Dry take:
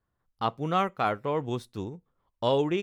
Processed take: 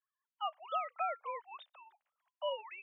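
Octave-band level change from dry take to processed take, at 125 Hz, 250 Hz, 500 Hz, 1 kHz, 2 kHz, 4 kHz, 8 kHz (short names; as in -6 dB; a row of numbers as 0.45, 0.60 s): under -40 dB, under -40 dB, -14.0 dB, -9.0 dB, -10.5 dB, -9.0 dB, under -25 dB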